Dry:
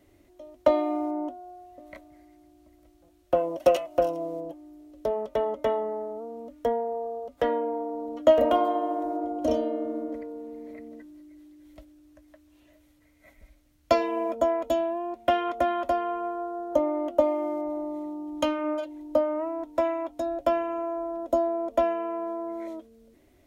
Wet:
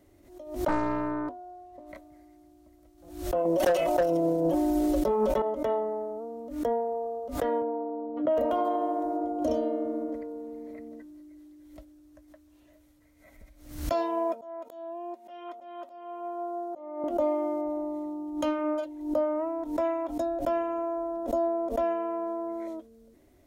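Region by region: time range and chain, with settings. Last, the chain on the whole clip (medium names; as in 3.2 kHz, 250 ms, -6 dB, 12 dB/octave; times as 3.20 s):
0.68–1.89 s: treble shelf 5.9 kHz -6 dB + loudspeaker Doppler distortion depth 0.88 ms
3.45–5.42 s: comb 5.4 ms, depth 86% + hard clipper -16 dBFS + level flattener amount 100%
7.62–8.37 s: high-pass 79 Hz 24 dB/octave + distance through air 450 m
13.92–17.04 s: Bessel high-pass 450 Hz + comb 3.2 ms, depth 58% + slow attack 623 ms
whole clip: peak limiter -18.5 dBFS; peaking EQ 2.7 kHz -5 dB 1.2 oct; swell ahead of each attack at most 88 dB/s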